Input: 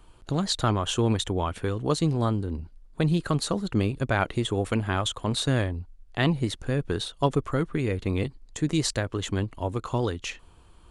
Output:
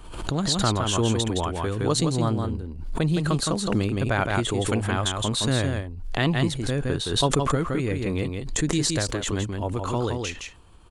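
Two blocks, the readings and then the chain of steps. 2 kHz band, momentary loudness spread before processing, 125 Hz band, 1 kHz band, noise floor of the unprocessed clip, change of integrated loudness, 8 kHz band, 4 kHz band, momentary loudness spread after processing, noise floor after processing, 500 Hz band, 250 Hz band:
+2.5 dB, 7 LU, +1.5 dB, +2.5 dB, -54 dBFS, +2.5 dB, +6.5 dB, +4.0 dB, 6 LU, -40 dBFS, +2.0 dB, +2.0 dB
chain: dynamic EQ 7700 Hz, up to +4 dB, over -47 dBFS, Q 0.74; echo 0.166 s -5 dB; backwards sustainer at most 59 dB/s

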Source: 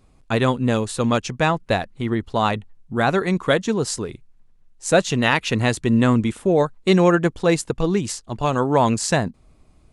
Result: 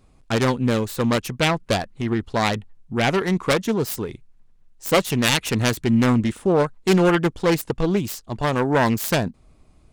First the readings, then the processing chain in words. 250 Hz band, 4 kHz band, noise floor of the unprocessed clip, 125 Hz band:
-0.5 dB, +2.0 dB, -55 dBFS, -1.0 dB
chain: self-modulated delay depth 0.36 ms; soft clip -4.5 dBFS, distortion -26 dB

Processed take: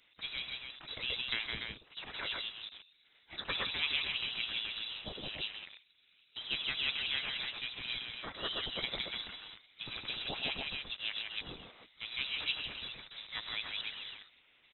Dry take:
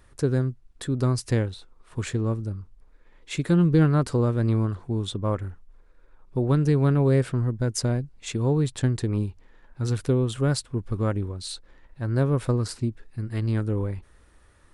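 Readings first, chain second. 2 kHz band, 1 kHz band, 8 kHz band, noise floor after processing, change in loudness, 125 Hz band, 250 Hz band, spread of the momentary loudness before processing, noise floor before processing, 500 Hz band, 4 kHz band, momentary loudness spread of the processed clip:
+2.0 dB, -11.5 dB, under -40 dB, -68 dBFS, -12.0 dB, -34.0 dB, -28.5 dB, 13 LU, -56 dBFS, -23.5 dB, +6.5 dB, 13 LU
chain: on a send: loudspeakers at several distances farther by 33 m -11 dB, 55 m -3 dB, 99 m -5 dB; on the sum: harmonic-percussive split percussive +7 dB; in parallel at -10 dB: bit-crush 5-bit; on the sum: spectral gate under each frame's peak -15 dB weak; inverted band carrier 3900 Hz; gain -8.5 dB

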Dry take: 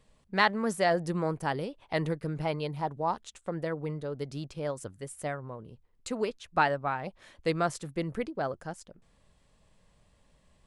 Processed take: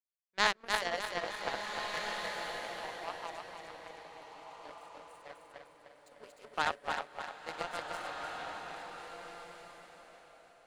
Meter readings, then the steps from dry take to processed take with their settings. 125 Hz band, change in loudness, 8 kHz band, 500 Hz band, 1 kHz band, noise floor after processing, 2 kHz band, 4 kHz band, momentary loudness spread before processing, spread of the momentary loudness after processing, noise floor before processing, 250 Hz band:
-22.5 dB, -5.5 dB, -2.5 dB, -10.5 dB, -5.5 dB, -62 dBFS, -2.5 dB, +1.5 dB, 13 LU, 20 LU, -66 dBFS, -17.5 dB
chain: regenerating reverse delay 0.151 s, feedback 80%, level -0.5 dB; HPF 570 Hz 12 dB/oct; power-law curve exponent 2; bloom reverb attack 1.66 s, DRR 4.5 dB

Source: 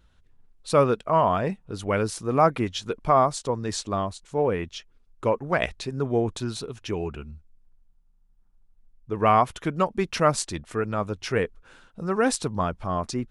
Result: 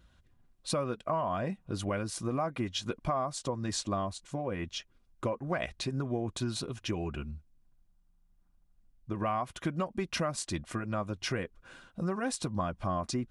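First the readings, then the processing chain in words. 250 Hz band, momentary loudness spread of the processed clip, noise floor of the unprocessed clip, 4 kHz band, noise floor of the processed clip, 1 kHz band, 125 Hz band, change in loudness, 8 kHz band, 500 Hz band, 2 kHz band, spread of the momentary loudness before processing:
-6.0 dB, 5 LU, -60 dBFS, -3.5 dB, -67 dBFS, -11.5 dB, -6.0 dB, -9.0 dB, -5.0 dB, -11.0 dB, -8.5 dB, 11 LU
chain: in parallel at -2 dB: limiter -14.5 dBFS, peak gain reduction 7.5 dB; on the sum: compressor 6:1, threshold -24 dBFS, peak gain reduction 13 dB; notch comb 440 Hz; gain -4 dB

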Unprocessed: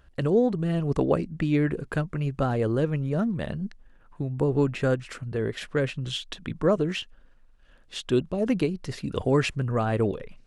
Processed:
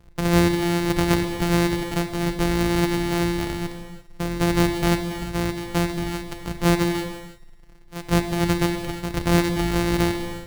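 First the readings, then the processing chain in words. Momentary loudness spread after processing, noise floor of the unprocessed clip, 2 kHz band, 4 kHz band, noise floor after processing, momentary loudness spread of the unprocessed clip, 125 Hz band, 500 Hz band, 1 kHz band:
11 LU, -56 dBFS, +7.5 dB, +7.0 dB, -47 dBFS, 9 LU, +3.0 dB, 0.0 dB, +7.5 dB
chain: sample sorter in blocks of 256 samples; low shelf 85 Hz +5.5 dB; thinning echo 76 ms, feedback 71%, high-pass 420 Hz, level -23 dB; non-linear reverb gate 0.37 s flat, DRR 6.5 dB; gain +1.5 dB

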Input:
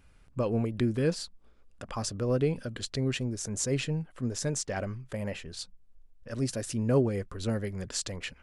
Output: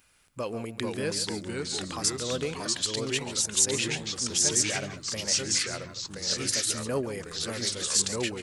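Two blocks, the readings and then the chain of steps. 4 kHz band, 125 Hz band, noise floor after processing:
+11.5 dB, -7.0 dB, -47 dBFS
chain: tilt +3.5 dB/oct; echo 0.14 s -13 dB; echoes that change speed 0.392 s, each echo -2 st, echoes 3

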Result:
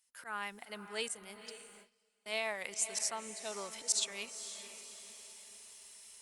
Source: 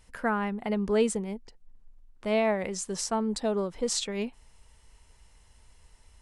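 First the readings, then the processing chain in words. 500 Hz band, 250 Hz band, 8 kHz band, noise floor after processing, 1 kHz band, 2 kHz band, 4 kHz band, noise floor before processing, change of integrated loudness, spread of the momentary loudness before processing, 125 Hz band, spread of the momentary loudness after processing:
-16.0 dB, -23.5 dB, 0.0 dB, -77 dBFS, -11.0 dB, -4.5 dB, -2.0 dB, -59 dBFS, -8.5 dB, 10 LU, under -20 dB, 18 LU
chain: differentiator; in parallel at +2.5 dB: compressor 10:1, threshold -50 dBFS, peak gain reduction 22 dB; on the sum: auto swell 0.12 s; diffused feedback echo 0.511 s, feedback 49%, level -11.5 dB; dynamic EQ 290 Hz, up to -3 dB, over -57 dBFS, Q 1.2; gate with hold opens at -49 dBFS; gain +5 dB; Opus 48 kbps 48000 Hz

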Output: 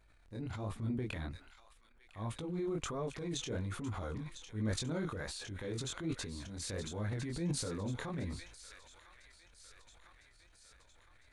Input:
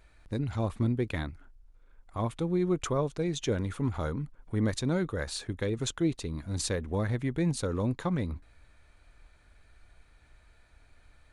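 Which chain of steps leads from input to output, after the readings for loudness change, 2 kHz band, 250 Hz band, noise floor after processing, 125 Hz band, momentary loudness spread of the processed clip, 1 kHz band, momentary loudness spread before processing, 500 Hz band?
-8.0 dB, -6.0 dB, -9.0 dB, -64 dBFS, -8.5 dB, 17 LU, -8.0 dB, 7 LU, -9.5 dB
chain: chorus 1.3 Hz, delay 18 ms, depth 7.2 ms; thin delay 1.005 s, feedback 63%, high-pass 1700 Hz, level -8 dB; transient shaper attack -6 dB, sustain +8 dB; gain -5.5 dB

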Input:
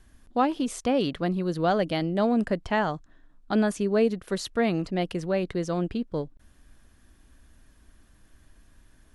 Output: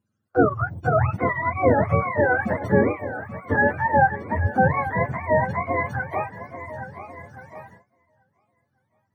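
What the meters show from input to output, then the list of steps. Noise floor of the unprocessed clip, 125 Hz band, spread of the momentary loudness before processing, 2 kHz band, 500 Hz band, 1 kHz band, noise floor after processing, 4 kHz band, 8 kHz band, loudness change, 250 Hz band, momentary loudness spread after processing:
-59 dBFS, +8.5 dB, 7 LU, +12.0 dB, +4.0 dB, +8.5 dB, -73 dBFS, under -20 dB, under -15 dB, +4.5 dB, -1.0 dB, 16 LU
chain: spectrum mirrored in octaves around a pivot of 600 Hz; LPF 1100 Hz 6 dB/oct; swung echo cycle 1.391 s, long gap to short 1.5:1, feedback 34%, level -13 dB; gate with hold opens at -39 dBFS; gain +8.5 dB

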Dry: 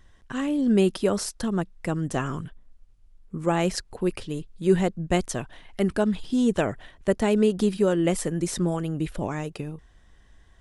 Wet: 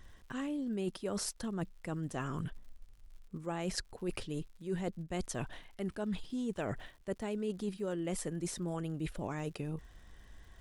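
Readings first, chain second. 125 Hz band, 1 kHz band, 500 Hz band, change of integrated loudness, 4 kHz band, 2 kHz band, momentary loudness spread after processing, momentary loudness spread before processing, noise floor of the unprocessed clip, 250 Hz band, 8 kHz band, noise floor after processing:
-11.0 dB, -12.5 dB, -14.5 dB, -13.5 dB, -10.0 dB, -11.5 dB, 7 LU, 13 LU, -56 dBFS, -13.5 dB, -8.5 dB, -59 dBFS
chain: reverse; compressor 6:1, threshold -35 dBFS, peak gain reduction 19.5 dB; reverse; crackle 120/s -54 dBFS

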